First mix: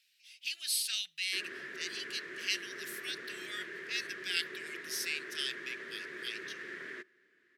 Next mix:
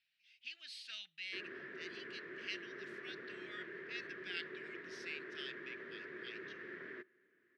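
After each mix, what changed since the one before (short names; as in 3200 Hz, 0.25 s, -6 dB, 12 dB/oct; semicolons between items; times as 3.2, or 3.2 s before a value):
master: add tape spacing loss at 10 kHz 35 dB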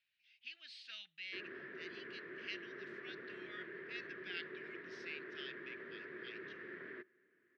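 master: add air absorption 120 m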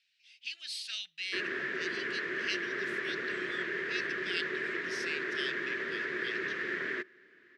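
background +10.0 dB; master: remove tape spacing loss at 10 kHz 35 dB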